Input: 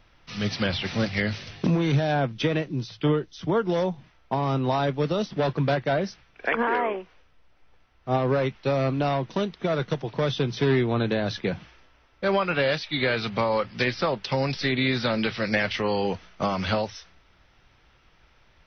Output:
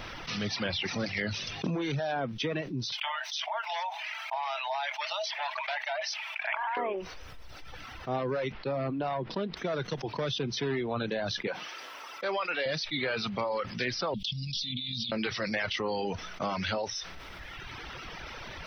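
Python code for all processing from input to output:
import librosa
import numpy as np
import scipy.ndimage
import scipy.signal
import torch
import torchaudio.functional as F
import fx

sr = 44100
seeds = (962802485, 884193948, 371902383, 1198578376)

y = fx.chain(x, sr, fx.cheby_ripple_highpass(hz=620.0, ripple_db=9),
    fx.env_flatten(amount_pct=50), at=(2.92, 6.77))
y = fx.chain(y, sr, fx.lowpass(hz=2000.0, slope=6),
    fx.resample_bad(factor=4, down='none', up='filtered'), at=(8.52, 9.57))
y = fx.chain(y, sr, fx.highpass(hz=400.0, slope=12),
    fx.high_shelf(hz=4100.0, db=5.0), at=(11.47, 12.66))
y = fx.chain(y, sr, fx.ellip_bandstop(low_hz=210.0, high_hz=3200.0, order=3, stop_db=40),
    fx.peak_eq(hz=3400.0, db=5.5, octaves=0.34),
    fx.over_compress(threshold_db=-36.0, ratio=-1.0), at=(14.14, 15.12))
y = fx.low_shelf(y, sr, hz=120.0, db=-8.5)
y = fx.dereverb_blind(y, sr, rt60_s=1.2)
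y = fx.env_flatten(y, sr, amount_pct=70)
y = F.gain(torch.from_numpy(y), -8.0).numpy()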